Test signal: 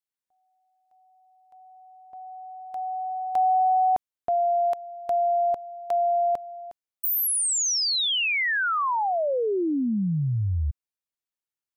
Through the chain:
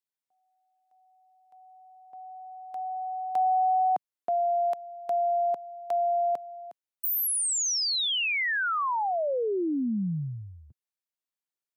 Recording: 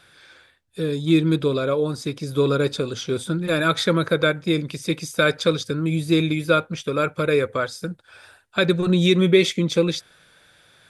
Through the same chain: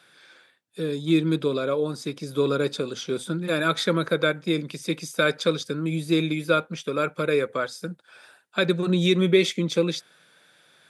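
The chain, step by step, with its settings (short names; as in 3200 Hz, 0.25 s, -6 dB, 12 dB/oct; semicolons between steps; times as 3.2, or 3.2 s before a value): HPF 150 Hz 24 dB/oct; gain -3 dB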